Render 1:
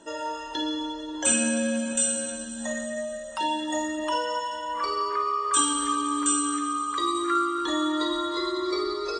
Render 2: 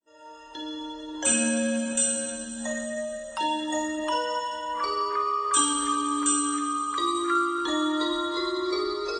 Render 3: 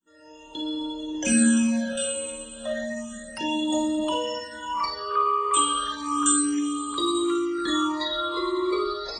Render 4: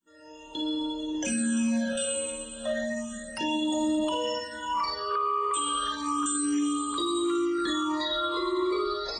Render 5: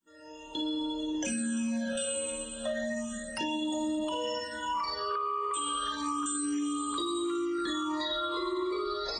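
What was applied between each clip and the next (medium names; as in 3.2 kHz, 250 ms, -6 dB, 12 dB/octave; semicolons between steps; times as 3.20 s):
fade-in on the opening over 1.42 s
peaking EQ 190 Hz +9.5 dB 0.75 oct; phase shifter stages 8, 0.32 Hz, lowest notch 210–1900 Hz; trim +3.5 dB
peak limiter -20 dBFS, peak gain reduction 10.5 dB
compression, threshold -29 dBFS, peak gain reduction 5.5 dB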